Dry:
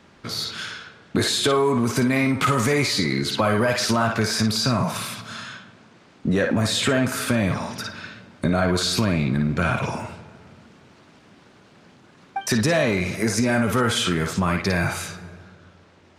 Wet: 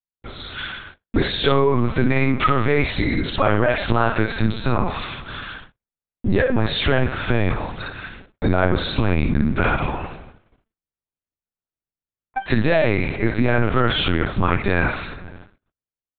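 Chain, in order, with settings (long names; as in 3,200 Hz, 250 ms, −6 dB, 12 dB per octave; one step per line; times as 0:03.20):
noise gate −43 dBFS, range −53 dB
automatic gain control gain up to 6 dB
linear-prediction vocoder at 8 kHz pitch kept
level −2 dB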